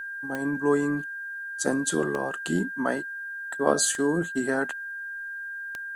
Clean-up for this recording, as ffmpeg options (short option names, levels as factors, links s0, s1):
-af "adeclick=t=4,bandreject=f=1600:w=30,agate=range=0.0891:threshold=0.0398"